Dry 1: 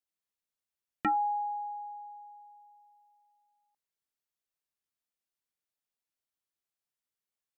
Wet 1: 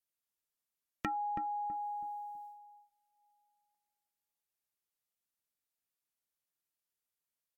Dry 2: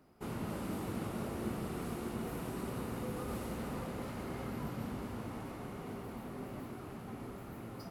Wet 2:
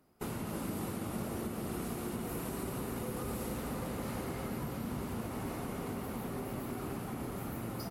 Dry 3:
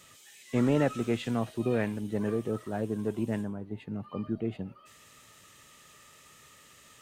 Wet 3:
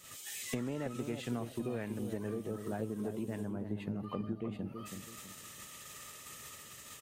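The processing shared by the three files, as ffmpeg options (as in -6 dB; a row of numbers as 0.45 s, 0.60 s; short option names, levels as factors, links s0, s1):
-filter_complex "[0:a]agate=range=0.282:threshold=0.00178:ratio=16:detection=peak,highshelf=f=8300:g=9.5,acompressor=threshold=0.00794:ratio=8,asplit=2[s0][s1];[s1]adelay=326,lowpass=f=800:p=1,volume=0.501,asplit=2[s2][s3];[s3]adelay=326,lowpass=f=800:p=1,volume=0.34,asplit=2[s4][s5];[s5]adelay=326,lowpass=f=800:p=1,volume=0.34,asplit=2[s6][s7];[s7]adelay=326,lowpass=f=800:p=1,volume=0.34[s8];[s2][s4][s6][s8]amix=inputs=4:normalize=0[s9];[s0][s9]amix=inputs=2:normalize=0,volume=2.24" -ar 44100 -c:a libmp3lame -b:a 64k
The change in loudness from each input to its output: -5.5 LU, +2.5 LU, -9.0 LU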